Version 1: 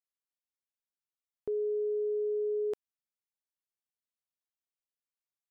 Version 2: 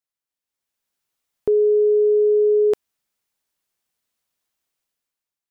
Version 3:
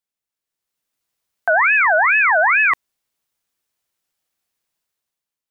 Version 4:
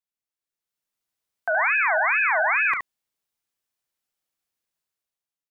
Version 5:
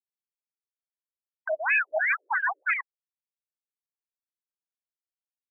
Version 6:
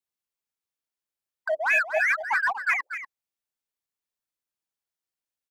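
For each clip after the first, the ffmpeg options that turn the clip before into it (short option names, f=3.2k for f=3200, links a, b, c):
-af "dynaudnorm=f=150:g=9:m=12dB,volume=3.5dB"
-af "aeval=exprs='val(0)*sin(2*PI*1600*n/s+1600*0.35/2.3*sin(2*PI*2.3*n/s))':c=same,volume=4.5dB"
-af "aecho=1:1:35|72:0.211|0.531,volume=-8dB"
-af "aeval=exprs='val(0)*gte(abs(val(0)),0.0119)':c=same,afftfilt=real='re*between(b*sr/1024,400*pow(2300/400,0.5+0.5*sin(2*PI*3*pts/sr))/1.41,400*pow(2300/400,0.5+0.5*sin(2*PI*3*pts/sr))*1.41)':imag='im*between(b*sr/1024,400*pow(2300/400,0.5+0.5*sin(2*PI*3*pts/sr))/1.41,400*pow(2300/400,0.5+0.5*sin(2*PI*3*pts/sr))*1.41)':win_size=1024:overlap=0.75"
-filter_complex "[0:a]asplit=2[a][b];[b]asoftclip=type=hard:threshold=-30.5dB,volume=-5.5dB[c];[a][c]amix=inputs=2:normalize=0,aecho=1:1:240:0.316"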